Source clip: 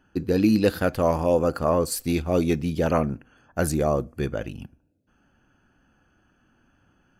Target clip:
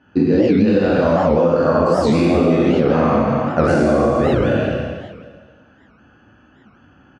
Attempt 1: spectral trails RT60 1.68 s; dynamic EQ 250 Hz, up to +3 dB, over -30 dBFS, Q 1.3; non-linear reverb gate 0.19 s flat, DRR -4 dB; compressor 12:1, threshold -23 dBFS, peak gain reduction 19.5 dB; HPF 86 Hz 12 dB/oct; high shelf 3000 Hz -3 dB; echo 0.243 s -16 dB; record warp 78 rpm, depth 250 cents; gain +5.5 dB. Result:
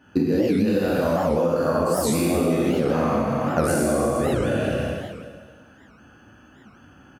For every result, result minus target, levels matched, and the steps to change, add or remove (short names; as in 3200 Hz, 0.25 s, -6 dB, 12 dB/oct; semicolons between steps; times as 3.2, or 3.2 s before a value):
compressor: peak gain reduction +6.5 dB; 4000 Hz band +3.5 dB
change: compressor 12:1, threshold -16 dBFS, peak gain reduction 13 dB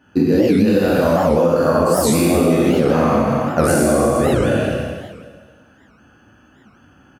4000 Hz band +3.0 dB
add after dynamic EQ: Bessel low-pass 3800 Hz, order 4